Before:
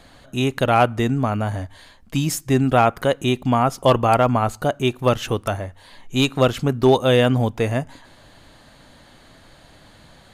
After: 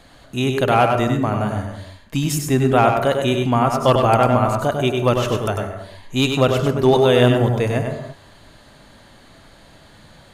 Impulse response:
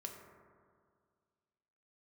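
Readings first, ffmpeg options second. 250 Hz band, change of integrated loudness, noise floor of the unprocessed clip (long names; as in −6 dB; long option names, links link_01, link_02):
+1.5 dB, +2.0 dB, −50 dBFS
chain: -filter_complex "[0:a]asplit=2[link_01][link_02];[1:a]atrim=start_sample=2205,afade=type=out:start_time=0.29:duration=0.01,atrim=end_sample=13230,adelay=98[link_03];[link_02][link_03]afir=irnorm=-1:irlink=0,volume=0dB[link_04];[link_01][link_04]amix=inputs=2:normalize=0"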